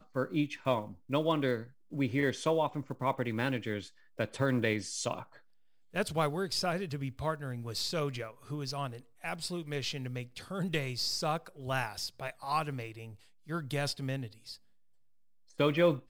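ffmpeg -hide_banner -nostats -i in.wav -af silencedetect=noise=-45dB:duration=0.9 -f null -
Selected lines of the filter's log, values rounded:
silence_start: 14.55
silence_end: 15.60 | silence_duration: 1.04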